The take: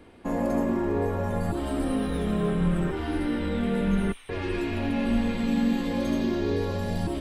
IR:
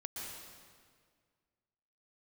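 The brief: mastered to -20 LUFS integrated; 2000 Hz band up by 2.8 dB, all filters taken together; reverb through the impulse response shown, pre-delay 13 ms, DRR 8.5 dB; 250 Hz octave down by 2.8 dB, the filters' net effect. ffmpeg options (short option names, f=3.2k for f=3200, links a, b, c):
-filter_complex "[0:a]equalizer=f=250:t=o:g=-3.5,equalizer=f=2k:t=o:g=3.5,asplit=2[a][b];[1:a]atrim=start_sample=2205,adelay=13[c];[b][c]afir=irnorm=-1:irlink=0,volume=-8dB[d];[a][d]amix=inputs=2:normalize=0,volume=8dB"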